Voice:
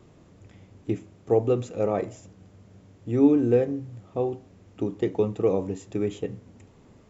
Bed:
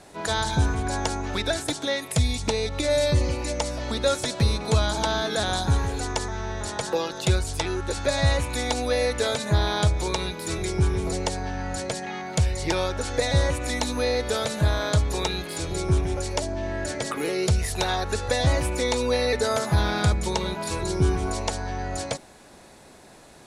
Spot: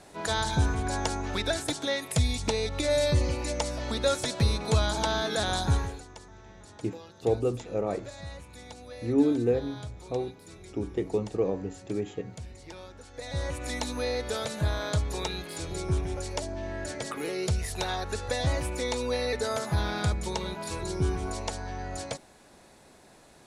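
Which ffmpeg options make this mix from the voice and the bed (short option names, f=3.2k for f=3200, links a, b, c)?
-filter_complex "[0:a]adelay=5950,volume=-4.5dB[a];[1:a]volume=11dB,afade=t=out:st=5.74:d=0.3:silence=0.141254,afade=t=in:st=13.13:d=0.56:silence=0.199526[b];[a][b]amix=inputs=2:normalize=0"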